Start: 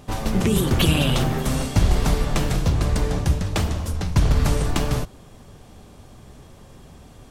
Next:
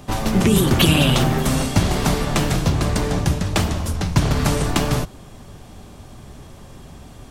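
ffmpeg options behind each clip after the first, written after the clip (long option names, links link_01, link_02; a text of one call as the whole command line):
ffmpeg -i in.wav -filter_complex "[0:a]equalizer=frequency=480:width=5.9:gain=-4,acrossover=split=110|4600[link_01][link_02][link_03];[link_01]acompressor=threshold=-28dB:ratio=6[link_04];[link_04][link_02][link_03]amix=inputs=3:normalize=0,volume=5dB" out.wav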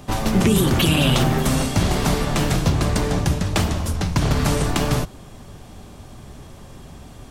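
ffmpeg -i in.wav -af "alimiter=level_in=6.5dB:limit=-1dB:release=50:level=0:latency=1,volume=-6.5dB" out.wav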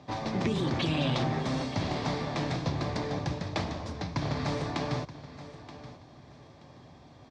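ffmpeg -i in.wav -af "highpass=130,equalizer=frequency=200:width_type=q:width=4:gain=-8,equalizer=frequency=400:width_type=q:width=4:gain=-5,equalizer=frequency=1400:width_type=q:width=4:gain=-7,equalizer=frequency=2900:width_type=q:width=4:gain=-9,lowpass=frequency=4900:width=0.5412,lowpass=frequency=4900:width=1.3066,aecho=1:1:927|1854|2781:0.178|0.0427|0.0102,volume=-7.5dB" out.wav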